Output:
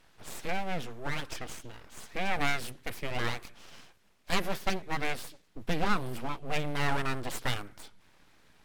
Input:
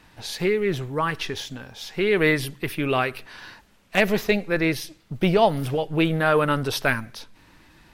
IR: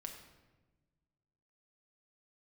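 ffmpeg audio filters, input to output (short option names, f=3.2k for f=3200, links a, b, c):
-af "aeval=exprs='abs(val(0))':c=same,asetrate=40517,aresample=44100,volume=-7dB"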